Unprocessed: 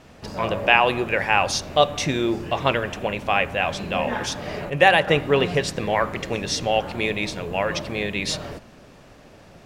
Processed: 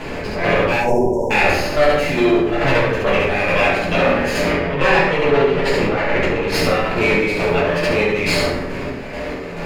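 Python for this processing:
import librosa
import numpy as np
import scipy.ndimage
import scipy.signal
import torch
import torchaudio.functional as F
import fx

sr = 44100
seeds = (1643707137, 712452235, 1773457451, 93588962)

y = fx.lower_of_two(x, sr, delay_ms=0.43)
y = 10.0 ** (-21.0 / 20.0) * np.tanh(y / 10.0 ** (-21.0 / 20.0))
y = fx.bass_treble(y, sr, bass_db=-9, treble_db=-12)
y = fx.echo_feedback(y, sr, ms=70, feedback_pct=42, wet_db=-3.5)
y = fx.chopper(y, sr, hz=2.3, depth_pct=65, duty_pct=45)
y = fx.spec_erase(y, sr, start_s=0.8, length_s=0.51, low_hz=1000.0, high_hz=5300.0)
y = fx.high_shelf(y, sr, hz=8100.0, db=-11.5, at=(4.5, 6.54))
y = fx.room_shoebox(y, sr, seeds[0], volume_m3=57.0, walls='mixed', distance_m=1.5)
y = fx.env_flatten(y, sr, amount_pct=50)
y = F.gain(torch.from_numpy(y), 1.5).numpy()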